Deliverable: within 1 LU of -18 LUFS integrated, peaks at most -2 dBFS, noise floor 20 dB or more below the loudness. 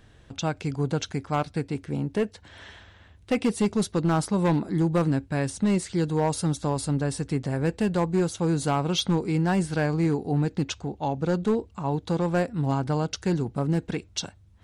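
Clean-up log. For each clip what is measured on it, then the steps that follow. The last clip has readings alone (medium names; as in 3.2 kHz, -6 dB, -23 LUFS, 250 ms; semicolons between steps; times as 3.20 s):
clipped samples 1.2%; clipping level -17.0 dBFS; loudness -26.5 LUFS; peak level -17.0 dBFS; loudness target -18.0 LUFS
-> clip repair -17 dBFS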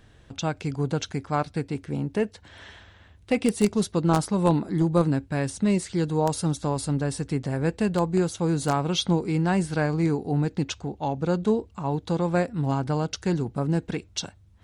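clipped samples 0.0%; loudness -26.0 LUFS; peak level -8.0 dBFS; loudness target -18.0 LUFS
-> trim +8 dB; peak limiter -2 dBFS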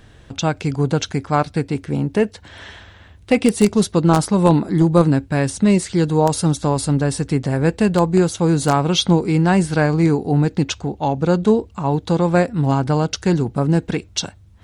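loudness -18.0 LUFS; peak level -2.0 dBFS; noise floor -46 dBFS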